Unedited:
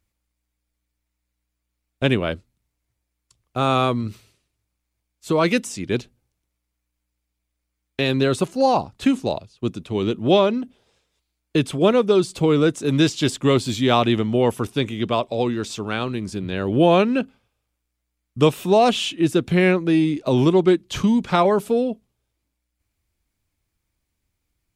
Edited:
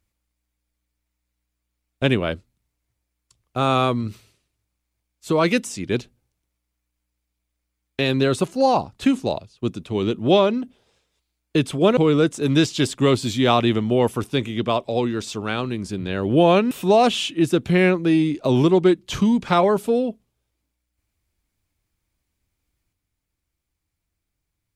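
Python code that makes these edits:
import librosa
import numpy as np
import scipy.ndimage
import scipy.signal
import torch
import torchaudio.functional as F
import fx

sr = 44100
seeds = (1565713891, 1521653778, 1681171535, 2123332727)

y = fx.edit(x, sr, fx.cut(start_s=11.97, length_s=0.43),
    fx.cut(start_s=17.14, length_s=1.39), tone=tone)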